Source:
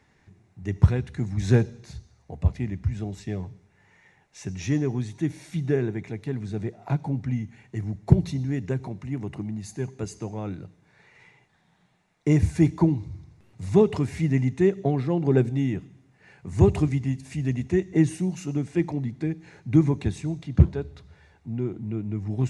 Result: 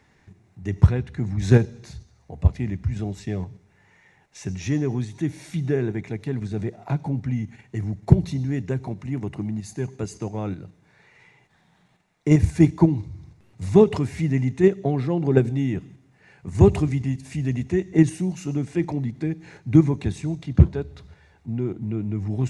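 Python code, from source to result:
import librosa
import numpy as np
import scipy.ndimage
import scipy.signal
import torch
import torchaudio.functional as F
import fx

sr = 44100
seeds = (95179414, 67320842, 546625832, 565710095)

p1 = fx.high_shelf(x, sr, hz=fx.line((0.87, 6900.0), (1.41, 4300.0)), db=-9.5, at=(0.87, 1.41), fade=0.02)
p2 = fx.level_steps(p1, sr, step_db=17)
p3 = p1 + F.gain(torch.from_numpy(p2), 1.5).numpy()
y = F.gain(torch.from_numpy(p3), -1.5).numpy()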